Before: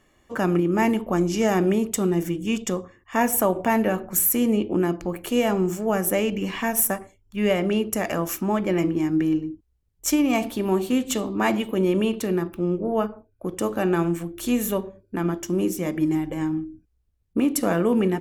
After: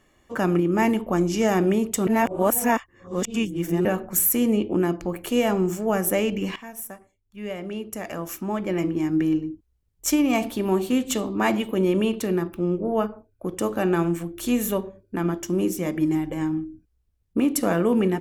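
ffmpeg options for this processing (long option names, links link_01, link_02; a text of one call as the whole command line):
ffmpeg -i in.wav -filter_complex "[0:a]asplit=4[link_01][link_02][link_03][link_04];[link_01]atrim=end=2.072[link_05];[link_02]atrim=start=2.068:end=3.852,asetpts=PTS-STARTPTS,areverse[link_06];[link_03]atrim=start=3.848:end=6.56,asetpts=PTS-STARTPTS,afade=type=out:start_time=2.708:duration=0.004:curve=hsin:silence=0.177828[link_07];[link_04]atrim=start=6.56,asetpts=PTS-STARTPTS,afade=type=in:duration=2.66:curve=qua:silence=0.177828[link_08];[link_05][link_06]acrossfade=duration=0.004:curve1=hsin:curve2=hsin[link_09];[link_07][link_08]concat=n=2:v=0:a=1[link_10];[link_09][link_10]acrossfade=duration=0.004:curve1=hsin:curve2=hsin" out.wav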